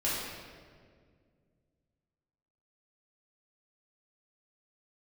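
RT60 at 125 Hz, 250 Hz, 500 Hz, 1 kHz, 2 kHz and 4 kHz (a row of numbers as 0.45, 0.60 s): 3.1, 2.8, 2.3, 1.6, 1.5, 1.2 s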